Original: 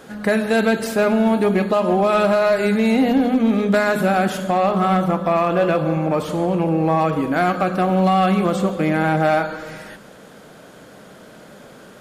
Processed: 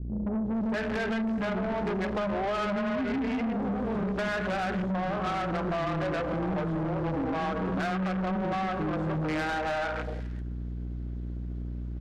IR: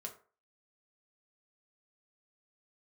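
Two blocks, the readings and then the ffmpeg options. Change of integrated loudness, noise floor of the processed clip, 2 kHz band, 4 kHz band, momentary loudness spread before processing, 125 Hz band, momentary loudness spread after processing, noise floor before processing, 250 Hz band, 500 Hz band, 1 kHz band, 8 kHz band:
-12.5 dB, -35 dBFS, -9.5 dB, -10.0 dB, 4 LU, -8.5 dB, 8 LU, -43 dBFS, -11.0 dB, -13.5 dB, -12.0 dB, under -15 dB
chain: -filter_complex "[0:a]acrusher=bits=6:dc=4:mix=0:aa=0.000001,equalizer=f=260:w=1.2:g=3.5,acrossover=split=370[a][b];[b]adelay=450[c];[a][c]amix=inputs=2:normalize=0,aeval=exprs='val(0)+0.0224*(sin(2*PI*60*n/s)+sin(2*PI*2*60*n/s)/2+sin(2*PI*3*60*n/s)/3+sin(2*PI*4*60*n/s)/4+sin(2*PI*5*60*n/s)/5)':c=same,afwtdn=0.0501,asplit=2[d][e];[1:a]atrim=start_sample=2205[f];[e][f]afir=irnorm=-1:irlink=0,volume=-14.5dB[g];[d][g]amix=inputs=2:normalize=0,adynamicequalizer=threshold=0.0126:dfrequency=1700:dqfactor=2.1:tfrequency=1700:tqfactor=2.1:attack=5:release=100:ratio=0.375:range=2.5:mode=boostabove:tftype=bell,acompressor=threshold=-20dB:ratio=10,lowpass=4.5k,asoftclip=type=tanh:threshold=-26.5dB"

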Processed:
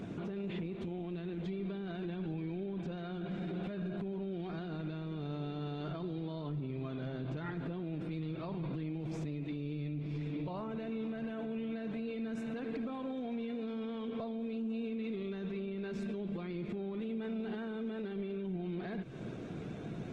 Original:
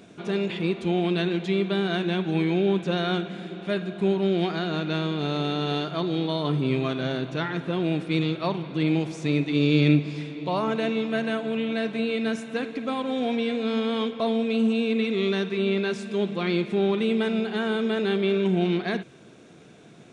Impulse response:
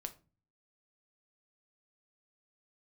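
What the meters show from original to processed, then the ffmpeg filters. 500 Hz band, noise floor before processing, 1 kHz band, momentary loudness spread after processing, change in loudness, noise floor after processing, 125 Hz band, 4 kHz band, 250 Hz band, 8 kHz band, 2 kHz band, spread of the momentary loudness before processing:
-15.5 dB, -49 dBFS, -16.5 dB, 2 LU, -14.0 dB, -43 dBFS, -11.5 dB, -22.0 dB, -12.5 dB, n/a, -19.0 dB, 6 LU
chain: -af "acompressor=threshold=-36dB:ratio=6,lowpass=f=2.2k:p=1,lowshelf=f=200:g=11,alimiter=level_in=11.5dB:limit=-24dB:level=0:latency=1:release=29,volume=-11.5dB,volume=3.5dB" -ar 48000 -c:a libopus -b:a 16k

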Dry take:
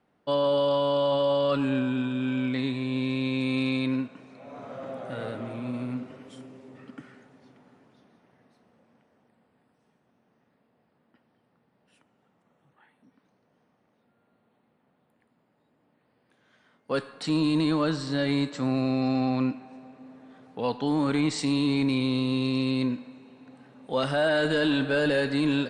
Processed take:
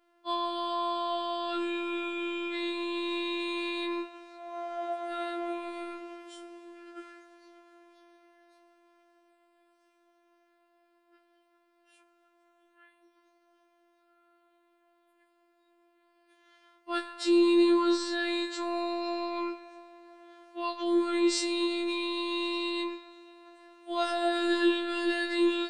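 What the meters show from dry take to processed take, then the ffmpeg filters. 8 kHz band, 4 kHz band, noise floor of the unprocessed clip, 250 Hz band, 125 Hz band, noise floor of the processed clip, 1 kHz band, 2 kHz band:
+2.0 dB, -0.5 dB, -70 dBFS, -4.0 dB, under -35 dB, -69 dBFS, +0.5 dB, -3.0 dB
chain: -af "alimiter=limit=-20.5dB:level=0:latency=1:release=42,afftfilt=real='hypot(re,im)*cos(PI*b)':imag='0':win_size=1024:overlap=0.75,afftfilt=real='re*4*eq(mod(b,16),0)':imag='im*4*eq(mod(b,16),0)':win_size=2048:overlap=0.75"

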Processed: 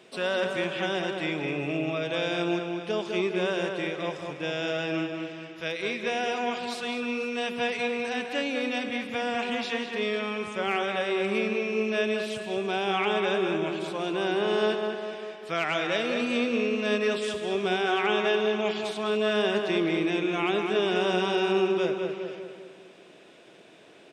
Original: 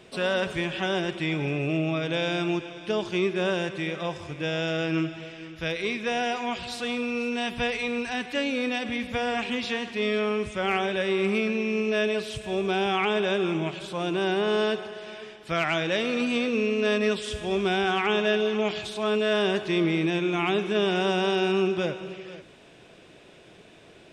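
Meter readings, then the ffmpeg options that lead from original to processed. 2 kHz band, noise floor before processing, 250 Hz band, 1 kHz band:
-1.0 dB, -51 dBFS, -2.0 dB, -0.5 dB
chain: -filter_complex "[0:a]highpass=210,asplit=2[a][b];[b]adelay=202,lowpass=f=2.6k:p=1,volume=-4.5dB,asplit=2[c][d];[d]adelay=202,lowpass=f=2.6k:p=1,volume=0.52,asplit=2[e][f];[f]adelay=202,lowpass=f=2.6k:p=1,volume=0.52,asplit=2[g][h];[h]adelay=202,lowpass=f=2.6k:p=1,volume=0.52,asplit=2[i][j];[j]adelay=202,lowpass=f=2.6k:p=1,volume=0.52,asplit=2[k][l];[l]adelay=202,lowpass=f=2.6k:p=1,volume=0.52,asplit=2[m][n];[n]adelay=202,lowpass=f=2.6k:p=1,volume=0.52[o];[a][c][e][g][i][k][m][o]amix=inputs=8:normalize=0,volume=-2dB"

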